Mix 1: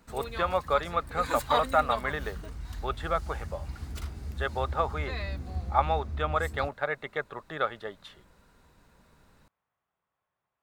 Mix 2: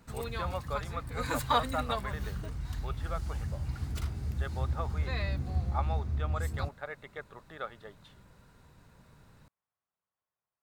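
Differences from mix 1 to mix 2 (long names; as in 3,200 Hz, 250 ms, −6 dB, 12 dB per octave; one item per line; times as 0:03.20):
speech −10.5 dB
background: add parametric band 120 Hz +10 dB 0.79 octaves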